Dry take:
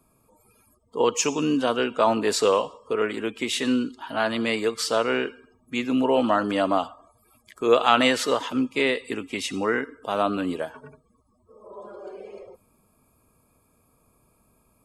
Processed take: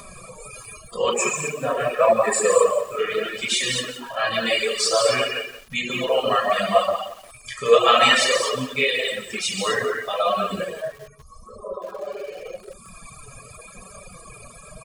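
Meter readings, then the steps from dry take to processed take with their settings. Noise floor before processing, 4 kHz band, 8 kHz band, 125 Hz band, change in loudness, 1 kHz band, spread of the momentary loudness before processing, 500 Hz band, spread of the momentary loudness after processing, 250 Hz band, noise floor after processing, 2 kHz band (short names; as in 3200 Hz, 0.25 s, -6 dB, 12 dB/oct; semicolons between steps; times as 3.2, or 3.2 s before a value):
-65 dBFS, +7.0 dB, +6.5 dB, +1.5 dB, +3.0 dB, +3.0 dB, 14 LU, +3.5 dB, 18 LU, -8.5 dB, -46 dBFS, +5.0 dB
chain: bell 2400 Hz +3 dB 1 oct; upward compressor, threshold -26 dBFS; high shelf 3500 Hz +7 dB; comb 1.7 ms, depth 89%; non-linear reverb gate 0.3 s flat, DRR -5.5 dB; spectral gain 1.14–2.97, 2700–6900 Hz -15 dB; notches 50/100/150/200/250/300/350/400/450 Hz; reverb removal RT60 0.5 s; downsampling 22050 Hz; reverb removal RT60 2 s; flange 0.86 Hz, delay 4.9 ms, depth 2.5 ms, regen +15%; lo-fi delay 0.175 s, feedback 35%, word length 6-bit, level -12.5 dB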